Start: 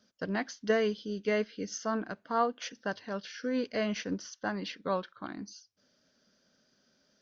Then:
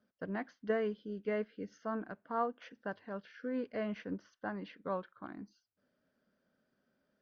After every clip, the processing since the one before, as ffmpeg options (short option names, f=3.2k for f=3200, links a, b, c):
-af "lowpass=1.9k,volume=-5.5dB"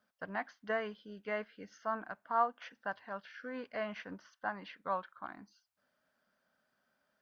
-af "lowshelf=f=580:t=q:w=1.5:g=-9.5,volume=3.5dB"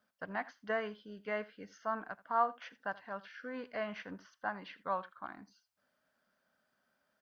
-af "aecho=1:1:81:0.106"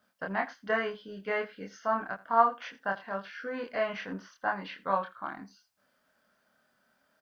-filter_complex "[0:a]asplit=2[a][b];[b]adelay=26,volume=-2.5dB[c];[a][c]amix=inputs=2:normalize=0,volume=5.5dB"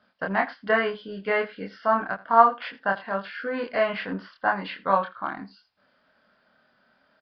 -af "aresample=11025,aresample=44100,volume=7dB"